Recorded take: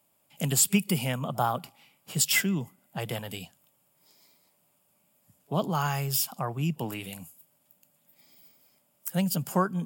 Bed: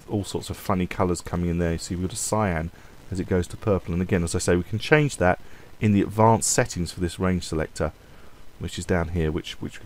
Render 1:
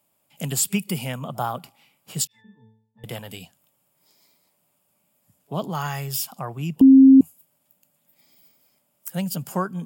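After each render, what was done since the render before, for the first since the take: 2.27–3.04 octave resonator A, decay 0.62 s; 5.69–6.12 small resonant body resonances 1900/3400 Hz, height 12 dB; 6.81–7.21 bleep 267 Hz -6.5 dBFS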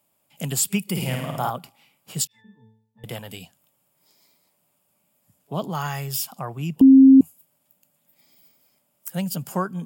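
0.9–1.5 flutter echo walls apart 9.2 m, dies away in 0.92 s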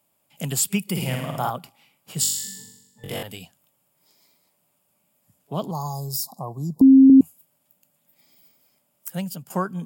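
2.2–3.23 flutter echo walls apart 3.6 m, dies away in 0.97 s; 5.71–7.1 Chebyshev band-stop 1100–3900 Hz, order 5; 9.09–9.5 fade out, to -13.5 dB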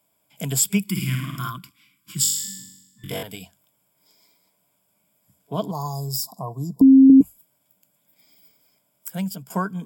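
0.86–3.1 spectral gain 370–1000 Hz -25 dB; ripple EQ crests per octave 1.7, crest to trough 8 dB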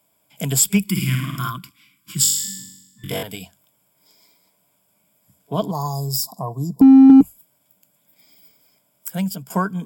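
in parallel at -5 dB: hard clip -13 dBFS, distortion -10 dB; on the sum: added harmonics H 6 -43 dB, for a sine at -2 dBFS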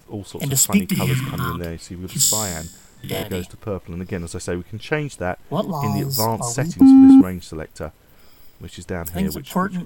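add bed -4.5 dB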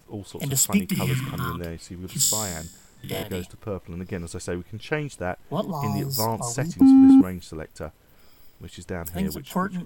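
gain -4.5 dB

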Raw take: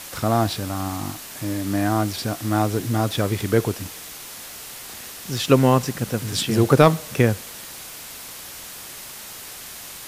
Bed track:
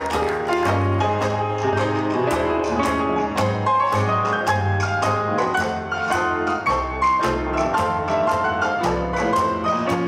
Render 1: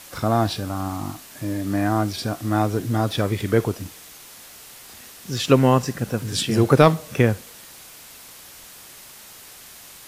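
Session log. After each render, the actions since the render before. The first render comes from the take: noise print and reduce 6 dB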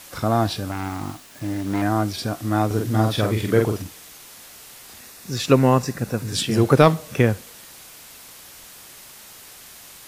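0.71–1.82 self-modulated delay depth 0.43 ms; 2.66–3.82 doubler 46 ms -4 dB; 5–6.35 notch 3100 Hz, Q 7.3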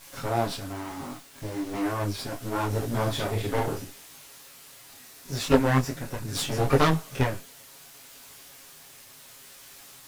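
minimum comb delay 7.3 ms; detuned doubles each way 25 cents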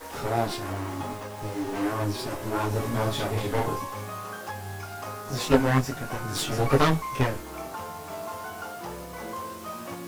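add bed track -16.5 dB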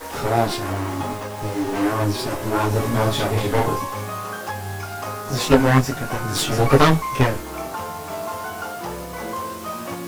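gain +7 dB; limiter -1 dBFS, peak gain reduction 3 dB

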